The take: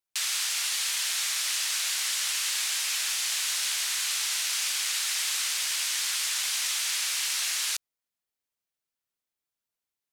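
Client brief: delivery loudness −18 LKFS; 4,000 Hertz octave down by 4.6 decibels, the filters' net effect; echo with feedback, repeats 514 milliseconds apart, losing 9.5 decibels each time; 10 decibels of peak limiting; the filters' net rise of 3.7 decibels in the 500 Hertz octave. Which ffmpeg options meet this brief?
ffmpeg -i in.wav -af "equalizer=frequency=500:width_type=o:gain=5,equalizer=frequency=4000:width_type=o:gain=-6,alimiter=level_in=4dB:limit=-24dB:level=0:latency=1,volume=-4dB,aecho=1:1:514|1028|1542|2056:0.335|0.111|0.0365|0.012,volume=16.5dB" out.wav

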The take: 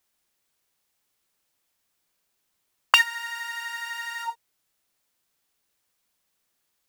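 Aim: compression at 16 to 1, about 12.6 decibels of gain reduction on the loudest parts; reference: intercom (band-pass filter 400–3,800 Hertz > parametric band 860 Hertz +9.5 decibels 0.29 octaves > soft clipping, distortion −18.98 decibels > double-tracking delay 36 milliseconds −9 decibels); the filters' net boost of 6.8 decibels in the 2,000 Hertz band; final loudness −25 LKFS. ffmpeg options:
ffmpeg -i in.wav -filter_complex "[0:a]equalizer=frequency=2000:width_type=o:gain=8.5,acompressor=threshold=-22dB:ratio=16,highpass=400,lowpass=3800,equalizer=frequency=860:width_type=o:width=0.29:gain=9.5,asoftclip=threshold=-10dB,asplit=2[link_01][link_02];[link_02]adelay=36,volume=-9dB[link_03];[link_01][link_03]amix=inputs=2:normalize=0,volume=1.5dB" out.wav

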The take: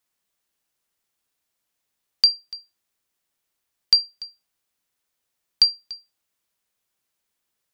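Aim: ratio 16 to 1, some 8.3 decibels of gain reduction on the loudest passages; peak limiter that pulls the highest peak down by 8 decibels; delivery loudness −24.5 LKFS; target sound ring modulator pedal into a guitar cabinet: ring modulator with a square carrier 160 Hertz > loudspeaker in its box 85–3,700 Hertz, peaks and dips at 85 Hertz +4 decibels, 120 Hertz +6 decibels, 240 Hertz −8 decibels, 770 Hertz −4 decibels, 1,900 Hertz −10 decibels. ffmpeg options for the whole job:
ffmpeg -i in.wav -af "acompressor=threshold=-19dB:ratio=16,alimiter=limit=-13.5dB:level=0:latency=1,aeval=exprs='val(0)*sgn(sin(2*PI*160*n/s))':channel_layout=same,highpass=85,equalizer=frequency=85:width_type=q:width=4:gain=4,equalizer=frequency=120:width_type=q:width=4:gain=6,equalizer=frequency=240:width_type=q:width=4:gain=-8,equalizer=frequency=770:width_type=q:width=4:gain=-4,equalizer=frequency=1900:width_type=q:width=4:gain=-10,lowpass=frequency=3700:width=0.5412,lowpass=frequency=3700:width=1.3066,volume=17dB" out.wav

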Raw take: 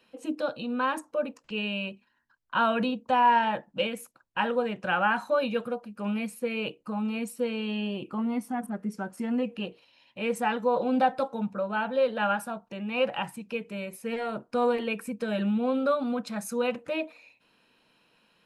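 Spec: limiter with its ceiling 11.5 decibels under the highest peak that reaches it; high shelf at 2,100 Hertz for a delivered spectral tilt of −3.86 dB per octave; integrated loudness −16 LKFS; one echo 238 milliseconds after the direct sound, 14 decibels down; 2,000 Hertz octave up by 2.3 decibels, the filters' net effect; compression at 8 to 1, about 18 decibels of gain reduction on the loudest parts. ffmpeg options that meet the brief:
ffmpeg -i in.wav -af "equalizer=frequency=2000:width_type=o:gain=6,highshelf=frequency=2100:gain=-4.5,acompressor=threshold=-37dB:ratio=8,alimiter=level_in=12dB:limit=-24dB:level=0:latency=1,volume=-12dB,aecho=1:1:238:0.2,volume=28.5dB" out.wav

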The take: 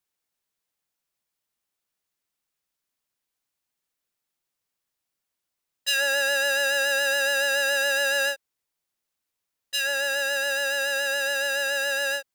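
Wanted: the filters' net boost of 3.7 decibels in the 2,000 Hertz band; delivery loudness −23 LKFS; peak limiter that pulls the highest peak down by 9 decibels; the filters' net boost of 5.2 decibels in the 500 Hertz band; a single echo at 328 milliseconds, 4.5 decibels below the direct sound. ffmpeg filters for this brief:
ffmpeg -i in.wav -af "equalizer=frequency=500:width_type=o:gain=5.5,equalizer=frequency=2000:width_type=o:gain=4.5,alimiter=limit=-18dB:level=0:latency=1,aecho=1:1:328:0.596,volume=1dB" out.wav

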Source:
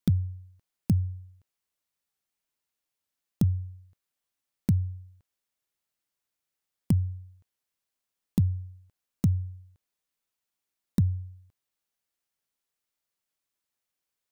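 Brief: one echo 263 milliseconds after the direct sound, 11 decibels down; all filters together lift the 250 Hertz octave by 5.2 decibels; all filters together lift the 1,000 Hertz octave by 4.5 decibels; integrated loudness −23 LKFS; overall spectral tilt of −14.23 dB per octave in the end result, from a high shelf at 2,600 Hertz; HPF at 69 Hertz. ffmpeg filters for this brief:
ffmpeg -i in.wav -af "highpass=69,equalizer=frequency=250:width_type=o:gain=7.5,equalizer=frequency=1000:width_type=o:gain=4,highshelf=frequency=2600:gain=8.5,aecho=1:1:263:0.282,volume=5dB" out.wav

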